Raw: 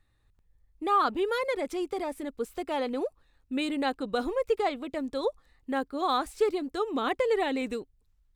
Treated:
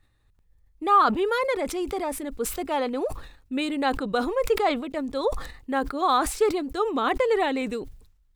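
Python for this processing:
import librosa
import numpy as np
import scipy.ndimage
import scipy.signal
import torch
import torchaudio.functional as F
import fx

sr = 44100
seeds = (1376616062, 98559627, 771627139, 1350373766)

y = fx.dynamic_eq(x, sr, hz=1100.0, q=1.1, threshold_db=-38.0, ratio=4.0, max_db=4)
y = fx.sustainer(y, sr, db_per_s=86.0)
y = y * 10.0 ** (2.5 / 20.0)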